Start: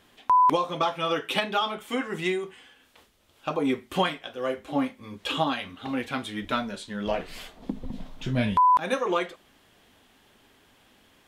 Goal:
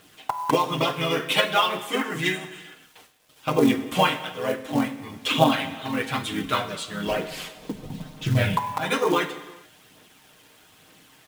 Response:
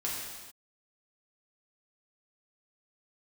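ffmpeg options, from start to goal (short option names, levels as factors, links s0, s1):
-filter_complex "[0:a]highpass=63,highshelf=f=4000:g=5,aecho=1:1:6.5:0.84,asplit=2[s0][s1];[s1]asetrate=37084,aresample=44100,atempo=1.18921,volume=0.562[s2];[s0][s2]amix=inputs=2:normalize=0,acrusher=bits=8:mix=0:aa=0.5,aphaser=in_gain=1:out_gain=1:delay=2.2:decay=0.32:speed=1.1:type=triangular,acrusher=bits=5:mode=log:mix=0:aa=0.000001,asplit=2[s3][s4];[1:a]atrim=start_sample=2205[s5];[s4][s5]afir=irnorm=-1:irlink=0,volume=0.224[s6];[s3][s6]amix=inputs=2:normalize=0,volume=0.841"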